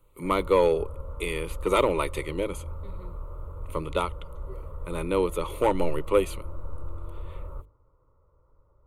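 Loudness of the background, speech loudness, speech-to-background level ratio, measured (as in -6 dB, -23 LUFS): -41.0 LUFS, -27.0 LUFS, 14.0 dB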